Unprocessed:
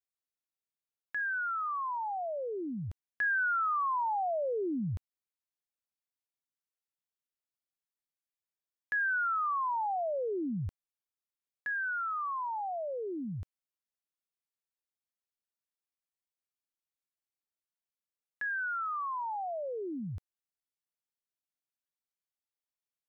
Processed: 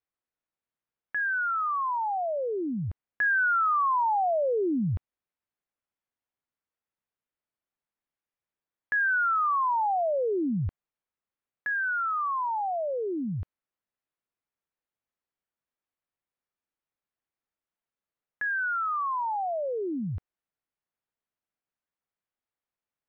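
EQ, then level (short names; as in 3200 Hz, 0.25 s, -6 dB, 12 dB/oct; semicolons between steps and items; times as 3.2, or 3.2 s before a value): LPF 2100 Hz 12 dB/oct; +6.5 dB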